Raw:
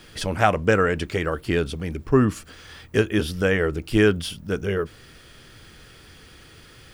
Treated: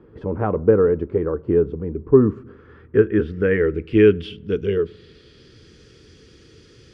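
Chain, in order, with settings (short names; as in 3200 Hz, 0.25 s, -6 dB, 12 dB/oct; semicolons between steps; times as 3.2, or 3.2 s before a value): HPF 44 Hz; resonant low shelf 550 Hz +7.5 dB, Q 3; low-pass sweep 970 Hz -> 5800 Hz, 2.12–5.77; on a send: air absorption 250 m + reverb RT60 1.0 s, pre-delay 9 ms, DRR 23 dB; on the sum: gain -7.5 dB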